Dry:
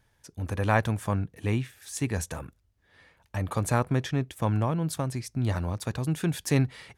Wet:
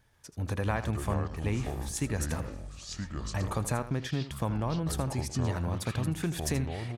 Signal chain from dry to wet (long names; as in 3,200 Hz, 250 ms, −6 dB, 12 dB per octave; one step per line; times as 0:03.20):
downward compressor, threshold −27 dBFS, peak gain reduction 10 dB
single-tap delay 80 ms −13 dB
delay with pitch and tempo change per echo 139 ms, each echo −6 semitones, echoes 3, each echo −6 dB